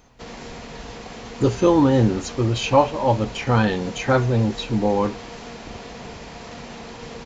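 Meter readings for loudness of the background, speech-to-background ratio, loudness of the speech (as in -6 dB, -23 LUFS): -37.0 LUFS, 16.5 dB, -20.5 LUFS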